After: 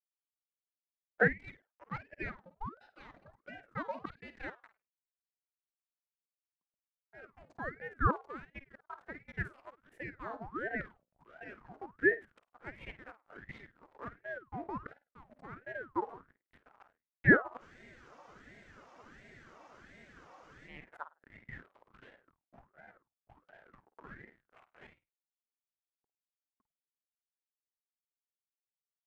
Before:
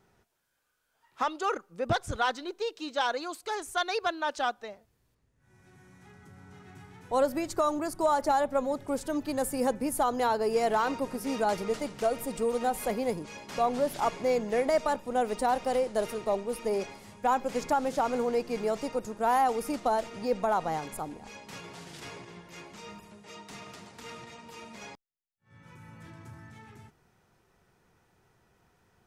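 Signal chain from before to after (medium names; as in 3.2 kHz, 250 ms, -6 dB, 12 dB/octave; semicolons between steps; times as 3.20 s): low-pass 11 kHz 12 dB/octave; in parallel at +1.5 dB: compression 5:1, threshold -42 dBFS, peak gain reduction 18.5 dB; on the sum: LFO high-pass saw down 0.74 Hz 800–2700 Hz; hysteresis with a dead band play -28 dBFS; vibrato 0.9 Hz 7.9 cents; wah-wah 0.25 Hz 390–1100 Hz, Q 4.6; on a send: flutter echo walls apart 8.8 m, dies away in 0.25 s; on the sum: spectral freeze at 17.63 s, 3.05 s; ring modulator with a swept carrier 660 Hz, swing 75%, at 1.4 Hz; trim +2.5 dB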